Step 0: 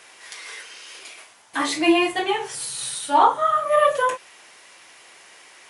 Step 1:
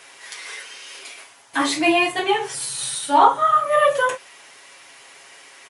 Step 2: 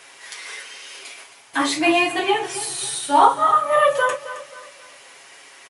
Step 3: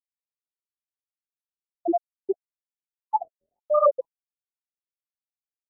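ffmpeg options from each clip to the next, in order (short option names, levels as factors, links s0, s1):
-af "aecho=1:1:7.3:0.48,volume=1.19"
-af "aecho=1:1:268|536|804|1072:0.2|0.0778|0.0303|0.0118"
-af "highpass=240,equalizer=f=280:t=q:w=4:g=-5,equalizer=f=950:t=q:w=4:g=-5,equalizer=f=2100:t=q:w=4:g=-6,lowpass=f=2800:w=0.5412,lowpass=f=2800:w=1.3066,afftfilt=real='re*gte(hypot(re,im),1.26)':imag='im*gte(hypot(re,im),1.26)':win_size=1024:overlap=0.75,afftfilt=real='re*lt(b*sr/1024,590*pow(1500/590,0.5+0.5*sin(2*PI*1.1*pts/sr)))':imag='im*lt(b*sr/1024,590*pow(1500/590,0.5+0.5*sin(2*PI*1.1*pts/sr)))':win_size=1024:overlap=0.75,volume=1.26"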